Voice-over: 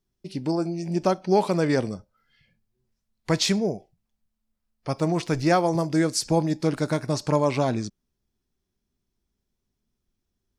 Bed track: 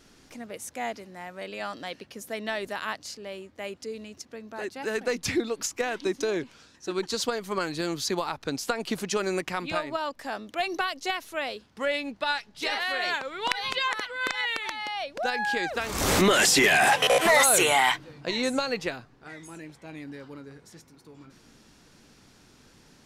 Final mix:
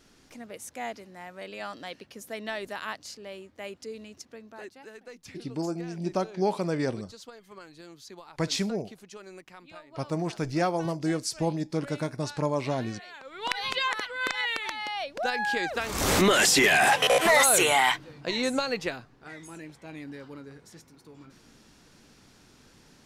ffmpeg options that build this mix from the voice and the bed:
-filter_complex "[0:a]adelay=5100,volume=-6dB[a];[1:a]volume=14.5dB,afade=t=out:st=4.25:d=0.67:silence=0.177828,afade=t=in:st=13.14:d=0.48:silence=0.133352[b];[a][b]amix=inputs=2:normalize=0"

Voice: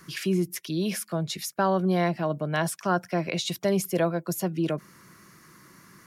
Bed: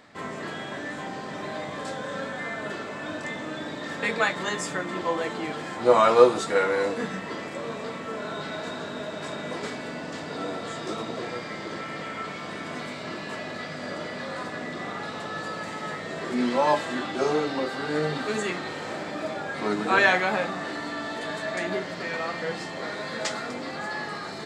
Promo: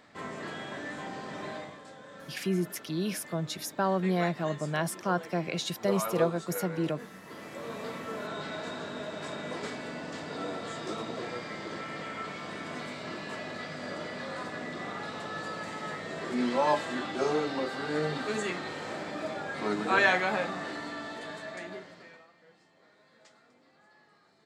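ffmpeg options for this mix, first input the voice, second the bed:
-filter_complex "[0:a]adelay=2200,volume=-4dB[a];[1:a]volume=7dB,afade=t=out:st=1.49:d=0.31:silence=0.281838,afade=t=in:st=7.21:d=0.64:silence=0.266073,afade=t=out:st=20.57:d=1.7:silence=0.0530884[b];[a][b]amix=inputs=2:normalize=0"

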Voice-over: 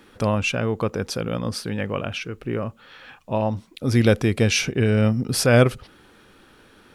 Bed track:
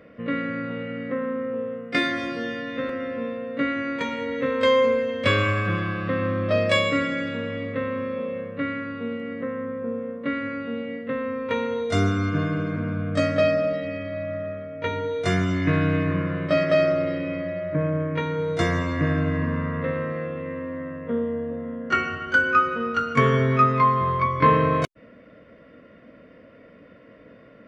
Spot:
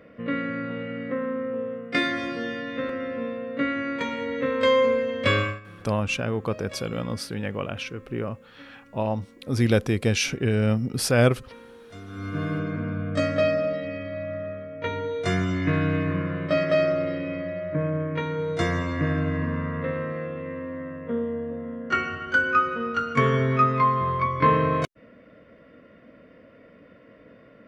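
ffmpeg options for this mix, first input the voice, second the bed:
-filter_complex "[0:a]adelay=5650,volume=-3.5dB[a];[1:a]volume=18dB,afade=t=out:st=5.37:d=0.23:silence=0.1,afade=t=in:st=12.07:d=0.45:silence=0.112202[b];[a][b]amix=inputs=2:normalize=0"

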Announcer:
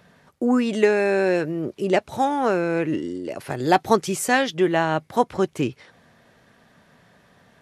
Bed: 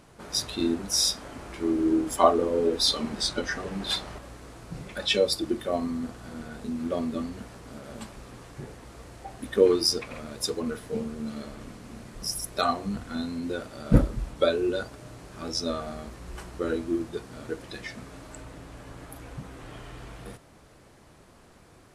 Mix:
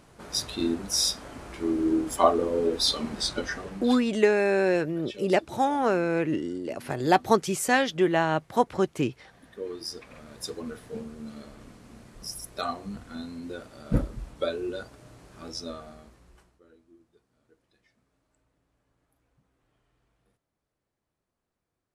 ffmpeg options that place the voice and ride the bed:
-filter_complex "[0:a]adelay=3400,volume=-3dB[a];[1:a]volume=11.5dB,afade=t=out:st=3.43:d=0.69:silence=0.133352,afade=t=in:st=9.57:d=0.96:silence=0.237137,afade=t=out:st=15.48:d=1.12:silence=0.0630957[b];[a][b]amix=inputs=2:normalize=0"

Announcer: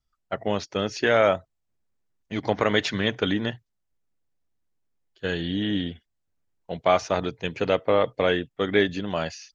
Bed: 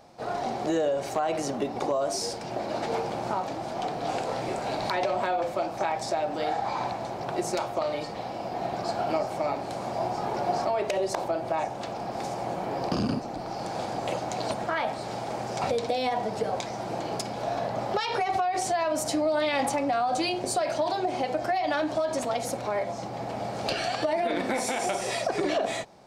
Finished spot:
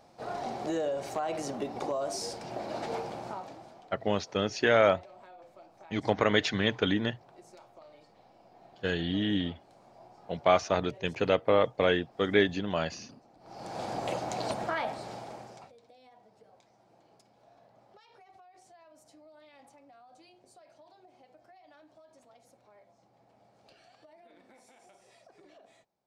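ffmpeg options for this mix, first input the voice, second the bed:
-filter_complex "[0:a]adelay=3600,volume=-3dB[a];[1:a]volume=16.5dB,afade=t=out:st=2.92:d=0.92:silence=0.105925,afade=t=in:st=13.4:d=0.51:silence=0.0794328,afade=t=out:st=14.68:d=1.02:silence=0.0398107[b];[a][b]amix=inputs=2:normalize=0"

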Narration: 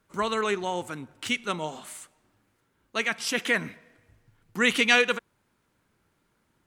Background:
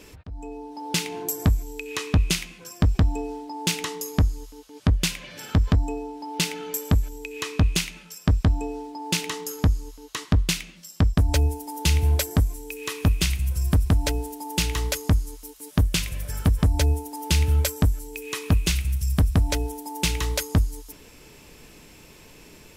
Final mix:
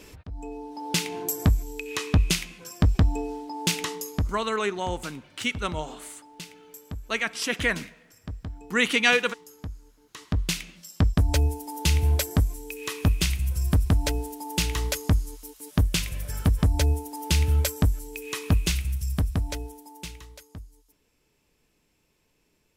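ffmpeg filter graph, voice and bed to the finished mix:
-filter_complex "[0:a]adelay=4150,volume=0dB[a];[1:a]volume=14.5dB,afade=t=out:st=3.9:d=0.54:silence=0.158489,afade=t=in:st=10.07:d=0.55:silence=0.177828,afade=t=out:st=18.56:d=1.72:silence=0.1[b];[a][b]amix=inputs=2:normalize=0"

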